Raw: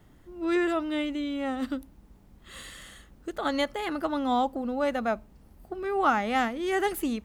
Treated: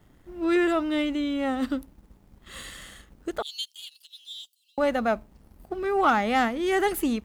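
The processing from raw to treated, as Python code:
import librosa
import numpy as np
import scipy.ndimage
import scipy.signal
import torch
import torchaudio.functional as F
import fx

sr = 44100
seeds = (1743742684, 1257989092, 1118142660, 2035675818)

y = fx.steep_highpass(x, sr, hz=2900.0, slope=72, at=(3.42, 4.78))
y = fx.leveller(y, sr, passes=1)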